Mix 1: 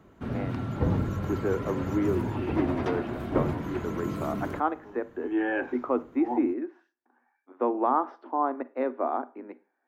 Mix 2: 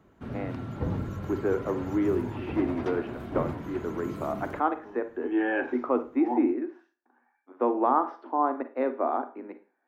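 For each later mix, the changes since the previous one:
speech: send +8.0 dB; background -4.5 dB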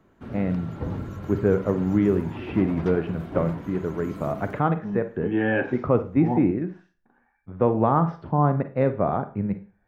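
speech: remove rippled Chebyshev high-pass 240 Hz, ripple 6 dB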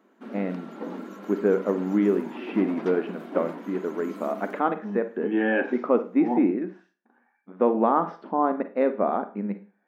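master: add brick-wall FIR high-pass 190 Hz

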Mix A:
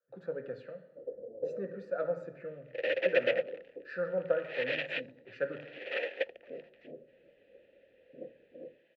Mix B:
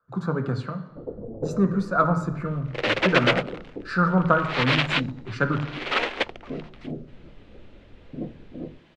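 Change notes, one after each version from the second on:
master: remove vowel filter e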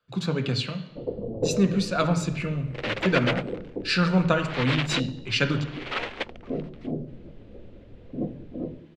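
speech: add resonant high shelf 1.9 kHz +13 dB, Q 3; first sound: send +9.5 dB; second sound -6.0 dB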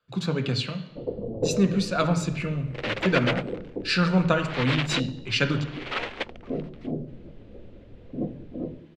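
no change

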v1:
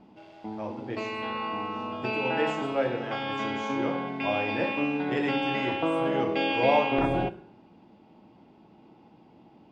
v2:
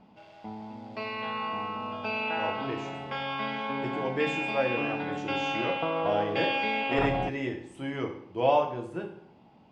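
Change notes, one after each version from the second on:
speech: entry +1.80 s; background: add peaking EQ 330 Hz -10 dB 0.59 oct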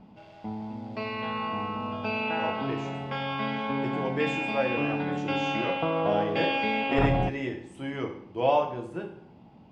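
background: add bass shelf 300 Hz +9 dB

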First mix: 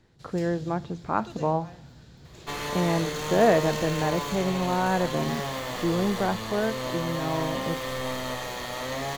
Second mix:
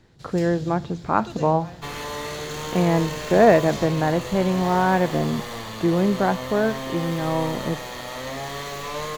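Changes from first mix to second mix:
speech +5.5 dB; first sound +5.5 dB; second sound: entry -0.65 s

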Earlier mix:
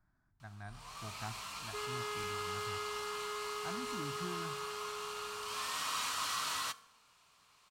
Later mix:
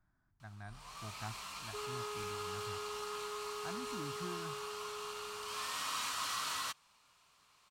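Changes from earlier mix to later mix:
second sound: add Butterworth band-pass 630 Hz, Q 0.71; reverb: off

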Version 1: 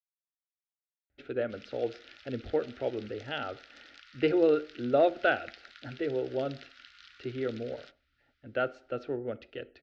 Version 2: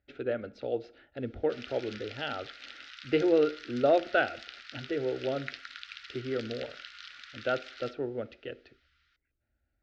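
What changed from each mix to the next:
speech: entry -1.10 s; background +7.5 dB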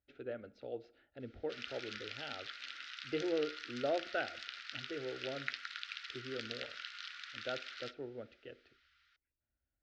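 speech -11.0 dB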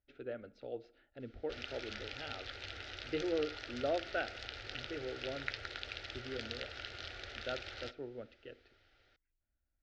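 background: remove steep high-pass 1 kHz 96 dB/octave; master: remove high-pass 55 Hz

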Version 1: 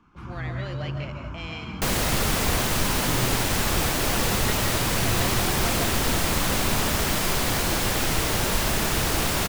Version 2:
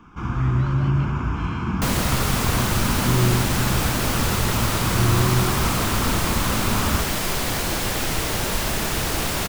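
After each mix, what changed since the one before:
speech -7.0 dB; first sound +11.5 dB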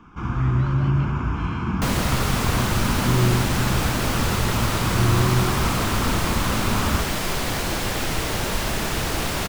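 master: add treble shelf 7 kHz -5.5 dB

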